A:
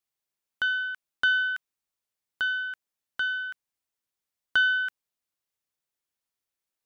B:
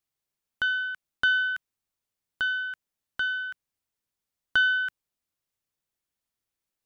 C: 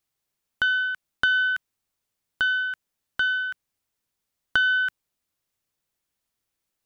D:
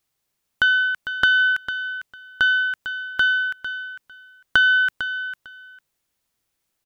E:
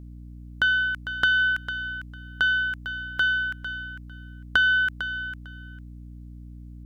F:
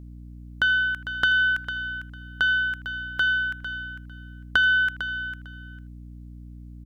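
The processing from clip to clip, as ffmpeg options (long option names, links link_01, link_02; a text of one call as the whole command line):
ffmpeg -i in.wav -af "lowshelf=frequency=240:gain=8" out.wav
ffmpeg -i in.wav -af "acompressor=threshold=-23dB:ratio=6,volume=5dB" out.wav
ffmpeg -i in.wav -af "aecho=1:1:451|902:0.282|0.0451,volume=5dB" out.wav
ffmpeg -i in.wav -af "aeval=exprs='val(0)+0.0158*(sin(2*PI*60*n/s)+sin(2*PI*2*60*n/s)/2+sin(2*PI*3*60*n/s)/3+sin(2*PI*4*60*n/s)/4+sin(2*PI*5*60*n/s)/5)':channel_layout=same,volume=-4dB" out.wav
ffmpeg -i in.wav -filter_complex "[0:a]asplit=2[link_01][link_02];[link_02]adelay=80,highpass=300,lowpass=3400,asoftclip=type=hard:threshold=-16dB,volume=-17dB[link_03];[link_01][link_03]amix=inputs=2:normalize=0" out.wav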